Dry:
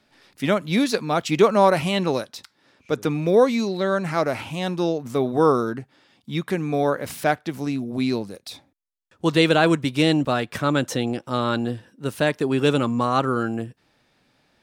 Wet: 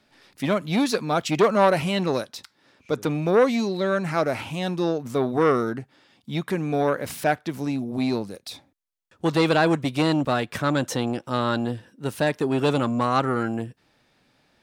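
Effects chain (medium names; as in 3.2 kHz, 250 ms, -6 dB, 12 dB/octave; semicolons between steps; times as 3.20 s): transformer saturation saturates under 880 Hz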